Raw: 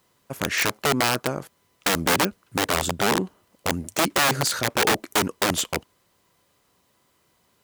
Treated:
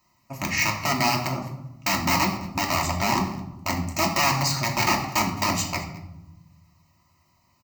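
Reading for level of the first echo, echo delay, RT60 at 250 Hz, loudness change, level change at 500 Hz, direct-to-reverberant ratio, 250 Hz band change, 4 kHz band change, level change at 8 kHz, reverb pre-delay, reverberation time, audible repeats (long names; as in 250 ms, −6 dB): −19.0 dB, 213 ms, 1.6 s, −1.0 dB, −5.5 dB, −1.0 dB, 0.0 dB, −2.0 dB, −2.0 dB, 3 ms, 0.95 s, 1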